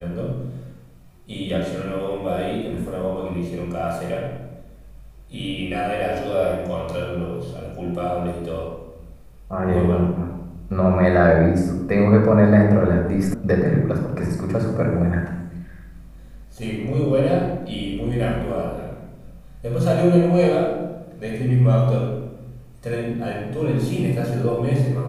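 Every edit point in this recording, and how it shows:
13.34 sound cut off

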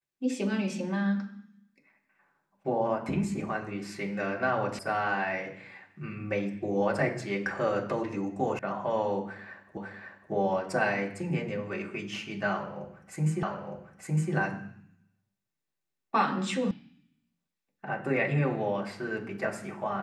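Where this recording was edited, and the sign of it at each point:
4.79 sound cut off
8.59 sound cut off
9.77 repeat of the last 0.55 s
13.43 repeat of the last 0.91 s
16.71 sound cut off

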